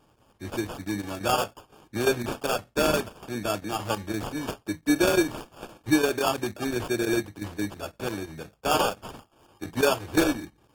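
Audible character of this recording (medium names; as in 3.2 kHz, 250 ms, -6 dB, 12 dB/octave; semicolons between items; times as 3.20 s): aliases and images of a low sample rate 2 kHz, jitter 0%; chopped level 5.8 Hz, depth 60%, duty 90%; AAC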